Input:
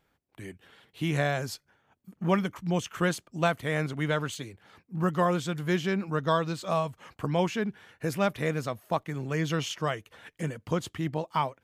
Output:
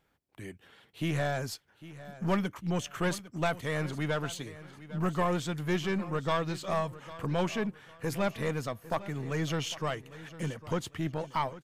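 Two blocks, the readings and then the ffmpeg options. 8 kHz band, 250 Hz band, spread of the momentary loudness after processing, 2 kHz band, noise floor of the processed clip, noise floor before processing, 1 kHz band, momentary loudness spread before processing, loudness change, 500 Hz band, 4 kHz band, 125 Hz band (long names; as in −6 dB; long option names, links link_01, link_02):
−1.5 dB, −3.0 dB, 11 LU, −3.5 dB, −66 dBFS, −74 dBFS, −3.5 dB, 10 LU, −3.0 dB, −3.5 dB, −2.0 dB, −2.5 dB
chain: -af "aeval=exprs='(tanh(8.91*val(0)+0.4)-tanh(0.4))/8.91':channel_layout=same,aecho=1:1:803|1606|2409:0.15|0.0449|0.0135"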